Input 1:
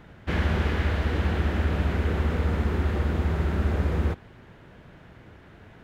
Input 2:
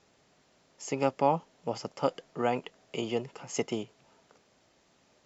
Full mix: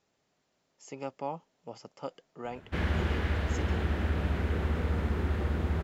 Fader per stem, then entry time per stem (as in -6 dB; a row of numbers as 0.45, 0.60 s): -5.0, -10.5 dB; 2.45, 0.00 s